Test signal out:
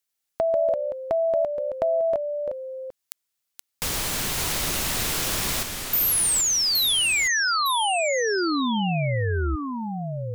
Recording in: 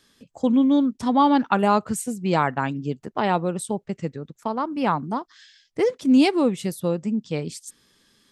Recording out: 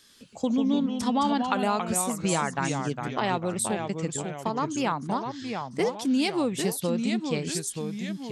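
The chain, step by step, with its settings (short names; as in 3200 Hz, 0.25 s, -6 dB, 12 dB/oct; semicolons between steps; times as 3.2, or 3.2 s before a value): high shelf 2100 Hz +9 dB; compressor 3:1, threshold -21 dBFS; echoes that change speed 92 ms, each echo -2 st, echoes 2, each echo -6 dB; gain -2.5 dB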